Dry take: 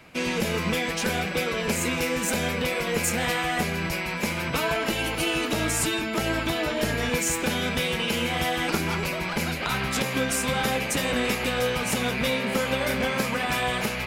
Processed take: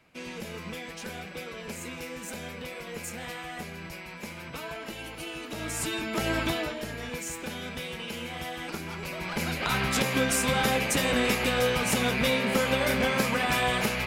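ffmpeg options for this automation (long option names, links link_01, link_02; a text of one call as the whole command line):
ffmpeg -i in.wav -af "volume=9.5dB,afade=type=in:start_time=5.47:duration=0.98:silence=0.266073,afade=type=out:start_time=6.45:duration=0.35:silence=0.334965,afade=type=in:start_time=8.96:duration=0.82:silence=0.298538" out.wav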